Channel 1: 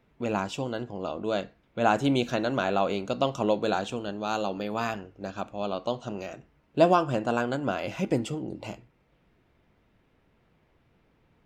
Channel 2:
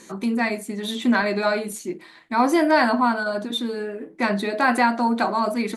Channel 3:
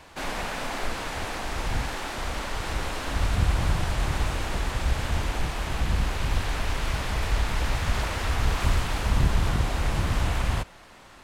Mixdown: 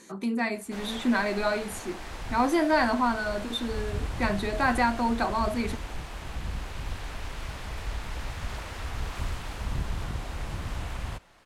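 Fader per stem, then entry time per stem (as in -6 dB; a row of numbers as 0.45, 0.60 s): off, -5.5 dB, -9.0 dB; off, 0.00 s, 0.55 s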